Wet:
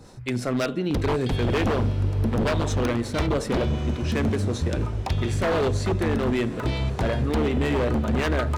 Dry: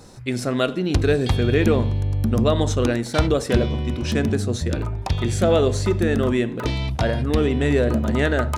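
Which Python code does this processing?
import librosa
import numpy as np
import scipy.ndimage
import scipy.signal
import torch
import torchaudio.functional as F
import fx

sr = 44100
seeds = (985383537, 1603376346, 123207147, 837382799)

p1 = fx.harmonic_tremolo(x, sr, hz=5.4, depth_pct=50, crossover_hz=400.0)
p2 = 10.0 ** (-17.5 / 20.0) * (np.abs((p1 / 10.0 ** (-17.5 / 20.0) + 3.0) % 4.0 - 2.0) - 1.0)
p3 = fx.bass_treble(p2, sr, bass_db=1, treble_db=-4)
y = p3 + fx.echo_diffused(p3, sr, ms=1233, feedback_pct=42, wet_db=-14, dry=0)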